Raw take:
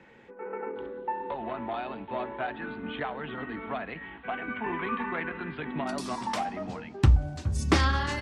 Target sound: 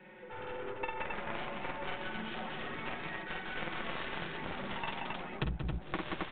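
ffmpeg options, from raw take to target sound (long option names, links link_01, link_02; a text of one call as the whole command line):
ffmpeg -i in.wav -filter_complex "[0:a]lowshelf=frequency=160:gain=-9.5,acrossover=split=140[link_01][link_02];[link_02]acompressor=threshold=-38dB:ratio=3[link_03];[link_01][link_03]amix=inputs=2:normalize=0,aecho=1:1:5.5:0.89,atempo=1.3,aeval=exprs='0.141*(cos(1*acos(clip(val(0)/0.141,-1,1)))-cos(1*PI/2))+0.0126*(cos(4*acos(clip(val(0)/0.141,-1,1)))-cos(4*PI/2))+0.0282*(cos(7*acos(clip(val(0)/0.141,-1,1)))-cos(7*PI/2))':channel_layout=same,flanger=delay=4.8:depth=3.1:regen=-48:speed=0.88:shape=triangular,aecho=1:1:49.56|177.8|268.2:0.891|0.631|0.708,acompressor=threshold=-40dB:ratio=16,volume=9dB" -ar 8000 -c:a pcm_mulaw out.wav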